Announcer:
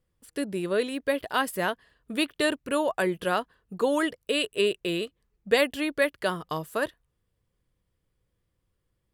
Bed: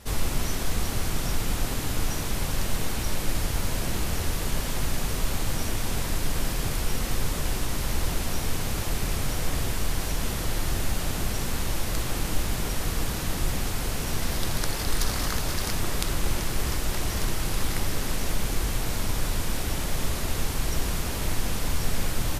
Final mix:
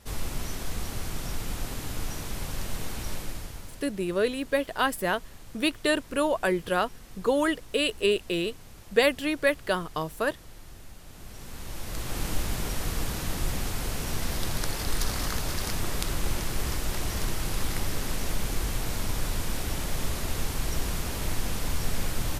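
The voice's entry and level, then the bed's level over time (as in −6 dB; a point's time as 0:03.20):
3.45 s, +0.5 dB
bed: 0:03.14 −6 dB
0:03.91 −20 dB
0:11.03 −20 dB
0:12.23 −2.5 dB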